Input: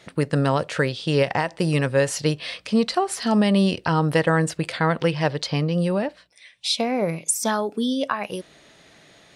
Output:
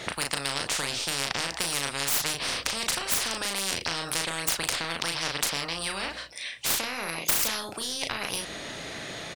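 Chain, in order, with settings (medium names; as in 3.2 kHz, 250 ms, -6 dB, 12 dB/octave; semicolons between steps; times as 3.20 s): tracing distortion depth 0.064 ms; doubling 36 ms -5.5 dB; spectrum-flattening compressor 10:1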